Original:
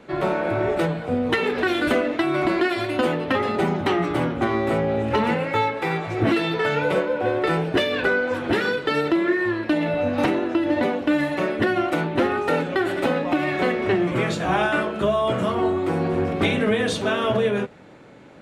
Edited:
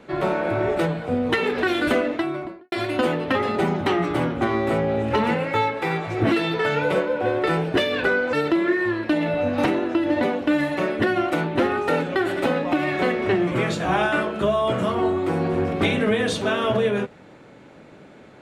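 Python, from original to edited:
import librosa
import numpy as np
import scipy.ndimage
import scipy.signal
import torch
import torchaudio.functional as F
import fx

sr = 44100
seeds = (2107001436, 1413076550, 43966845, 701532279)

y = fx.studio_fade_out(x, sr, start_s=2.0, length_s=0.72)
y = fx.edit(y, sr, fx.cut(start_s=8.33, length_s=0.6), tone=tone)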